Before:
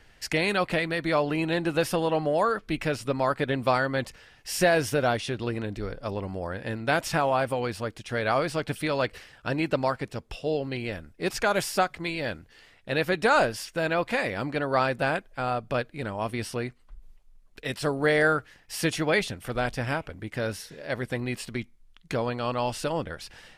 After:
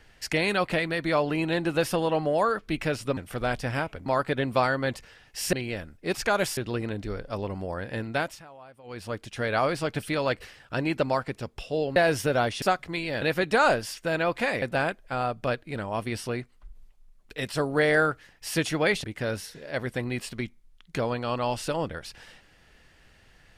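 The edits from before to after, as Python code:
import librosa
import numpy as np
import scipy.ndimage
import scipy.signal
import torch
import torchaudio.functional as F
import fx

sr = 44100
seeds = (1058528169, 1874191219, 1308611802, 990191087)

y = fx.edit(x, sr, fx.swap(start_s=4.64, length_s=0.66, other_s=10.69, other_length_s=1.04),
    fx.fade_down_up(start_s=6.81, length_s=1.09, db=-23.5, fade_s=0.34),
    fx.cut(start_s=12.33, length_s=0.6),
    fx.cut(start_s=14.33, length_s=0.56),
    fx.move(start_s=19.31, length_s=0.89, to_s=3.17), tone=tone)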